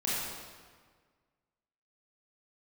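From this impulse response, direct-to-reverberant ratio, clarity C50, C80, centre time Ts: -8.5 dB, -3.5 dB, -0.5 dB, 116 ms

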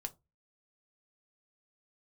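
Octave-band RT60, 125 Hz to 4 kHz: 0.40 s, 0.30 s, 0.25 s, 0.20 s, 0.15 s, 0.15 s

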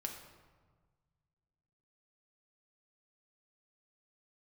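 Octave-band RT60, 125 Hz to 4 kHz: 2.6 s, 1.8 s, 1.5 s, 1.5 s, 1.1 s, 0.85 s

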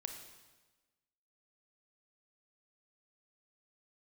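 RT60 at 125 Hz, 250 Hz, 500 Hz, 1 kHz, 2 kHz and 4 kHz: 1.3 s, 1.3 s, 1.2 s, 1.2 s, 1.2 s, 1.1 s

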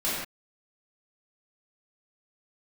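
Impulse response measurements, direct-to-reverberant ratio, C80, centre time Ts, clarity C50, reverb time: -10.0 dB, 1.5 dB, 74 ms, -1.5 dB, no single decay rate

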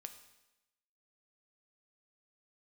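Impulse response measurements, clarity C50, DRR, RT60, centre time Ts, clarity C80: 10.5 dB, 7.0 dB, 0.95 s, 12 ms, 12.5 dB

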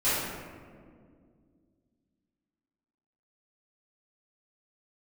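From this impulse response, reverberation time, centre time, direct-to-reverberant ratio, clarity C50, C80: 2.1 s, 114 ms, -15.5 dB, -3.0 dB, 0.5 dB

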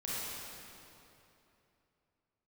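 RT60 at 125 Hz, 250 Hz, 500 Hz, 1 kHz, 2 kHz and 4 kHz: 3.3 s, 3.1 s, 3.1 s, 2.9 s, 2.6 s, 2.3 s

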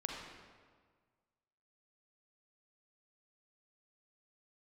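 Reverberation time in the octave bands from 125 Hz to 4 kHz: 1.9 s, 1.7 s, 1.6 s, 1.6 s, 1.4 s, 1.1 s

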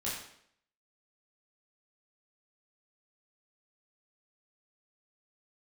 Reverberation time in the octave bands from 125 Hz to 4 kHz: 0.60 s, 0.70 s, 0.70 s, 0.65 s, 0.65 s, 0.60 s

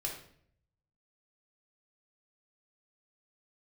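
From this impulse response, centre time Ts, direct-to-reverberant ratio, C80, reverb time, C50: 30 ms, -1.5 dB, 9.5 dB, 0.60 s, 5.5 dB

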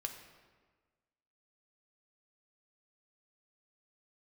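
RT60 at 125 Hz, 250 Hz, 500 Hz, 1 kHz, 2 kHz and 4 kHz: 1.5 s, 1.5 s, 1.5 s, 1.4 s, 1.3 s, 1.0 s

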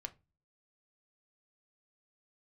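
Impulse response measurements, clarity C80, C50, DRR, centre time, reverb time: 27.5 dB, 20.5 dB, 5.5 dB, 4 ms, 0.25 s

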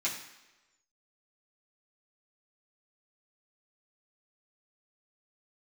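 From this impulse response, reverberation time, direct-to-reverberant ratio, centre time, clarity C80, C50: 1.1 s, -8.0 dB, 29 ms, 9.5 dB, 7.0 dB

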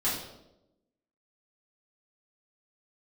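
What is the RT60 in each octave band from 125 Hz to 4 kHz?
1.0 s, 1.2 s, 1.0 s, 0.75 s, 0.60 s, 0.65 s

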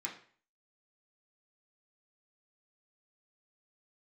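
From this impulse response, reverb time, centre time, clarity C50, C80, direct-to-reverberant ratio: 0.45 s, 19 ms, 9.5 dB, 13.5 dB, -4.0 dB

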